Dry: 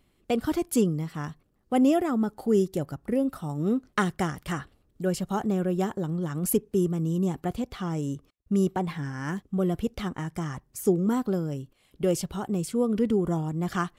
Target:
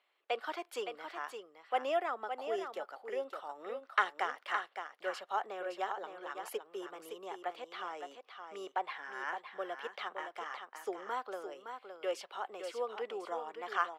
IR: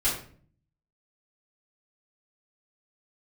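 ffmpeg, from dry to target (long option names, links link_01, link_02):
-filter_complex "[0:a]highpass=frequency=420:width=0.5412,highpass=frequency=420:width=1.3066,acrossover=split=600 4000:gain=0.158 1 0.0794[link_01][link_02][link_03];[link_01][link_02][link_03]amix=inputs=3:normalize=0,asplit=2[link_04][link_05];[link_05]aecho=0:1:565:0.422[link_06];[link_04][link_06]amix=inputs=2:normalize=0,volume=-1dB"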